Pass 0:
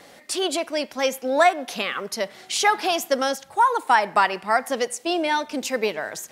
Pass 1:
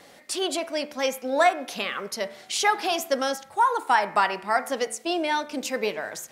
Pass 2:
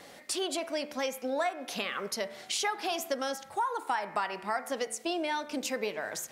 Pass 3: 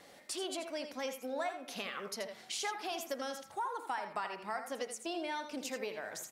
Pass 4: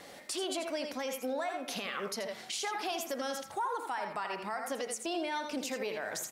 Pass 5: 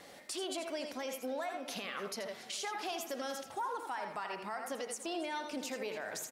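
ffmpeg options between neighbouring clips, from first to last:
-af "bandreject=f=73.91:t=h:w=4,bandreject=f=147.82:t=h:w=4,bandreject=f=221.73:t=h:w=4,bandreject=f=295.64:t=h:w=4,bandreject=f=369.55:t=h:w=4,bandreject=f=443.46:t=h:w=4,bandreject=f=517.37:t=h:w=4,bandreject=f=591.28:t=h:w=4,bandreject=f=665.19:t=h:w=4,bandreject=f=739.1:t=h:w=4,bandreject=f=813.01:t=h:w=4,bandreject=f=886.92:t=h:w=4,bandreject=f=960.83:t=h:w=4,bandreject=f=1034.74:t=h:w=4,bandreject=f=1108.65:t=h:w=4,bandreject=f=1182.56:t=h:w=4,bandreject=f=1256.47:t=h:w=4,bandreject=f=1330.38:t=h:w=4,bandreject=f=1404.29:t=h:w=4,bandreject=f=1478.2:t=h:w=4,bandreject=f=1552.11:t=h:w=4,bandreject=f=1626.02:t=h:w=4,bandreject=f=1699.93:t=h:w=4,bandreject=f=1773.84:t=h:w=4,bandreject=f=1847.75:t=h:w=4,bandreject=f=1921.66:t=h:w=4,bandreject=f=1995.57:t=h:w=4,bandreject=f=2069.48:t=h:w=4,bandreject=f=2143.39:t=h:w=4,bandreject=f=2217.3:t=h:w=4,bandreject=f=2291.21:t=h:w=4,bandreject=f=2365.12:t=h:w=4,bandreject=f=2439.03:t=h:w=4,bandreject=f=2512.94:t=h:w=4,volume=0.75"
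-af "acompressor=threshold=0.0282:ratio=3"
-af "aecho=1:1:82:0.355,volume=0.447"
-af "alimiter=level_in=2.99:limit=0.0631:level=0:latency=1:release=64,volume=0.335,volume=2.24"
-af "aecho=1:1:286|572|858|1144|1430:0.119|0.0677|0.0386|0.022|0.0125,volume=0.668"

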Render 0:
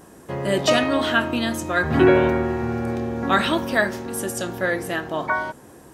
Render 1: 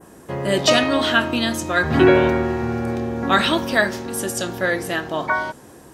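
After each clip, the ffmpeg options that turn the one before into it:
-af "adynamicequalizer=threshold=0.0126:dfrequency=4600:dqfactor=0.84:tfrequency=4600:tqfactor=0.84:attack=5:release=100:ratio=0.375:range=2.5:mode=boostabove:tftype=bell,volume=1.19"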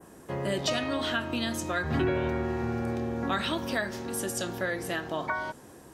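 -filter_complex "[0:a]acrossover=split=130[s0][s1];[s1]acompressor=threshold=0.0794:ratio=3[s2];[s0][s2]amix=inputs=2:normalize=0,volume=0.501"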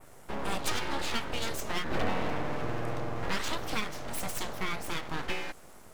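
-af "aeval=exprs='abs(val(0))':c=same"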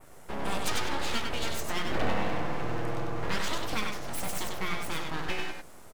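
-af "aecho=1:1:97:0.596"

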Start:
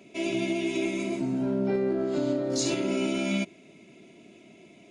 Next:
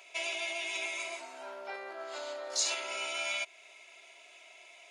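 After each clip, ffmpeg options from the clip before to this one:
-filter_complex "[0:a]asplit=2[s0][s1];[s1]acompressor=threshold=0.0178:ratio=6,volume=1.26[s2];[s0][s2]amix=inputs=2:normalize=0,highpass=f=770:w=0.5412,highpass=f=770:w=1.3066,volume=0.794"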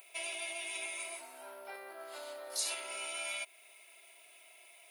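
-af "aexciter=amount=14.5:drive=8.4:freq=10000,volume=0.531"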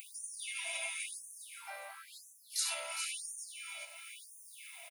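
-af "aecho=1:1:409|818|1227|1636:0.398|0.127|0.0408|0.013,acompressor=mode=upward:threshold=0.00708:ratio=2.5,afftfilt=real='re*gte(b*sr/1024,500*pow(5800/500,0.5+0.5*sin(2*PI*0.97*pts/sr)))':imag='im*gte(b*sr/1024,500*pow(5800/500,0.5+0.5*sin(2*PI*0.97*pts/sr)))':win_size=1024:overlap=0.75,volume=1.12"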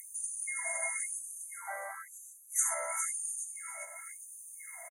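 -af "acontrast=80,afftfilt=real='re*(1-between(b*sr/4096,2200,6000))':imag='im*(1-between(b*sr/4096,2200,6000))':win_size=4096:overlap=0.75,aresample=32000,aresample=44100"

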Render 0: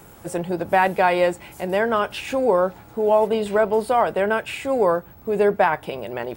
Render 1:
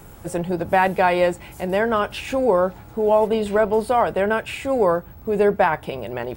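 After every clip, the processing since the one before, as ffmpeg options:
-af "lowshelf=f=100:g=11.5"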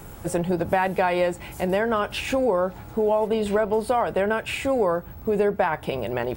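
-af "acompressor=threshold=0.0891:ratio=4,volume=1.26"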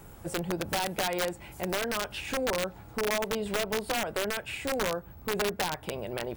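-af "aeval=exprs='(mod(5.31*val(0)+1,2)-1)/5.31':c=same,volume=0.398"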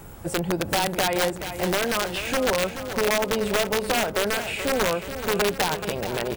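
-af "aecho=1:1:429|858|1287|1716|2145|2574|3003:0.299|0.17|0.097|0.0553|0.0315|0.018|0.0102,volume=2.11"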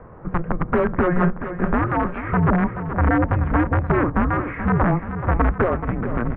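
-af "highpass=f=240:t=q:w=0.5412,highpass=f=240:t=q:w=1.307,lowpass=f=2000:t=q:w=0.5176,lowpass=f=2000:t=q:w=0.7071,lowpass=f=2000:t=q:w=1.932,afreqshift=-350,volume=2.11"

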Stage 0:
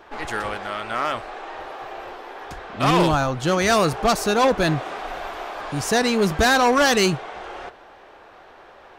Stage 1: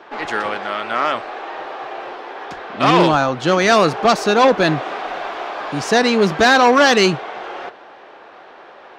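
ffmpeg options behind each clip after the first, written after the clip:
-filter_complex "[0:a]acrossover=split=150 6100:gain=0.1 1 0.141[s0][s1][s2];[s0][s1][s2]amix=inputs=3:normalize=0,volume=1.88"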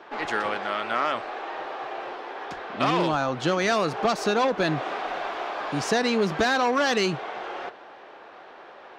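-af "acompressor=threshold=0.178:ratio=5,volume=0.596"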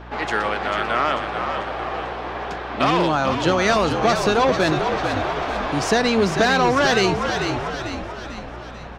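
-filter_complex "[0:a]asplit=2[s0][s1];[s1]asplit=7[s2][s3][s4][s5][s6][s7][s8];[s2]adelay=443,afreqshift=-54,volume=0.473[s9];[s3]adelay=886,afreqshift=-108,volume=0.251[s10];[s4]adelay=1329,afreqshift=-162,volume=0.133[s11];[s5]adelay=1772,afreqshift=-216,volume=0.0708[s12];[s6]adelay=2215,afreqshift=-270,volume=0.0372[s13];[s7]adelay=2658,afreqshift=-324,volume=0.0197[s14];[s8]adelay=3101,afreqshift=-378,volume=0.0105[s15];[s9][s10][s11][s12][s13][s14][s15]amix=inputs=7:normalize=0[s16];[s0][s16]amix=inputs=2:normalize=0,aeval=exprs='val(0)+0.00708*(sin(2*PI*60*n/s)+sin(2*PI*2*60*n/s)/2+sin(2*PI*3*60*n/s)/3+sin(2*PI*4*60*n/s)/4+sin(2*PI*5*60*n/s)/5)':c=same,volume=1.68"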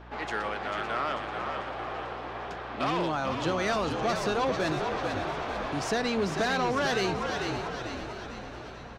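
-filter_complex "[0:a]asoftclip=type=tanh:threshold=0.335,asplit=2[s0][s1];[s1]aecho=0:1:558|1116|1674|2232|2790:0.237|0.121|0.0617|0.0315|0.016[s2];[s0][s2]amix=inputs=2:normalize=0,volume=0.355"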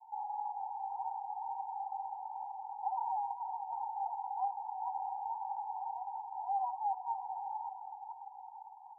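-af "asuperpass=centerf=850:order=12:qfactor=4.3,volume=1.26"

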